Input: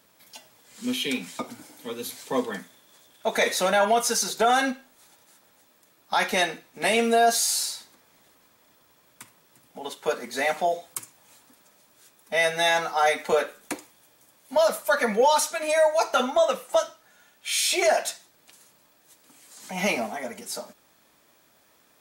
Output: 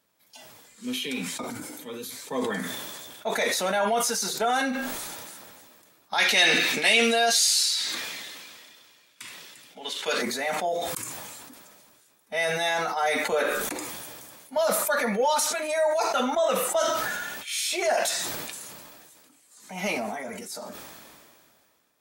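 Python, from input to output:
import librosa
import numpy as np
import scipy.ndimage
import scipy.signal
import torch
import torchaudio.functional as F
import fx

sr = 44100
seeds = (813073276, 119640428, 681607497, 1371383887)

y = fx.weighting(x, sr, curve='D', at=(6.18, 10.22))
y = fx.noise_reduce_blind(y, sr, reduce_db=6)
y = fx.sustainer(y, sr, db_per_s=26.0)
y = F.gain(torch.from_numpy(y), -4.5).numpy()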